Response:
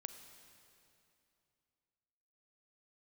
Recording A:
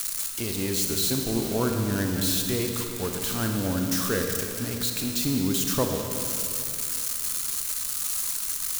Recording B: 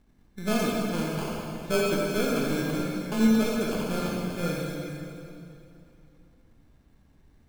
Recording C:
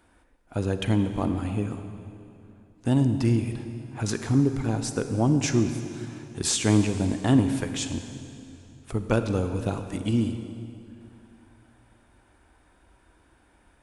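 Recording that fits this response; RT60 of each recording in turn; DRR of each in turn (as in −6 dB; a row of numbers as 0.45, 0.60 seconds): C; 2.8, 2.8, 2.8 seconds; 3.0, −3.5, 8.0 decibels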